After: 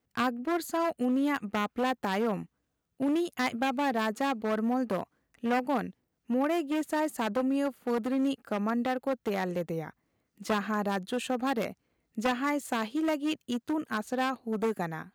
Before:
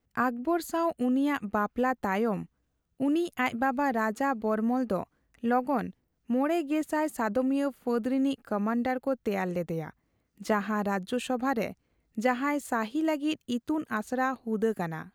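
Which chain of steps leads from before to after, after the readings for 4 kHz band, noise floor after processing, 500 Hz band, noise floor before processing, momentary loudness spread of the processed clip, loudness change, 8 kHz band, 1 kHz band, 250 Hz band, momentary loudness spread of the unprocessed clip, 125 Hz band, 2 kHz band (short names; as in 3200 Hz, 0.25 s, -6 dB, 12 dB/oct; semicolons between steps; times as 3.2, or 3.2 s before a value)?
+4.0 dB, -81 dBFS, -1.5 dB, -76 dBFS, 5 LU, -1.5 dB, +1.0 dB, -1.5 dB, -1.5 dB, 6 LU, -2.0 dB, -1.5 dB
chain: one-sided fold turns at -24 dBFS; HPF 140 Hz 6 dB/oct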